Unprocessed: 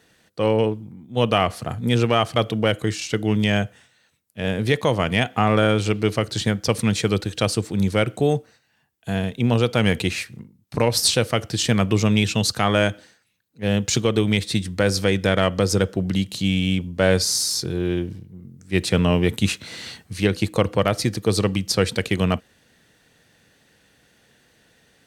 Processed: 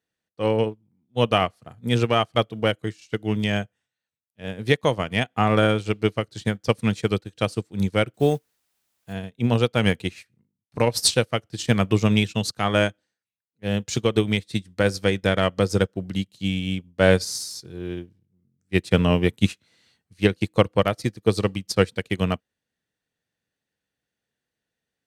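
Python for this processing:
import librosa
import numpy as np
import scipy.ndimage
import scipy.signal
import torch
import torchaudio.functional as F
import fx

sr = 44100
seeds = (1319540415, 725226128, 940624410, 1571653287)

y = fx.quant_dither(x, sr, seeds[0], bits=8, dither='triangular', at=(8.14, 9.13))
y = fx.upward_expand(y, sr, threshold_db=-34.0, expansion=2.5)
y = y * librosa.db_to_amplitude(3.5)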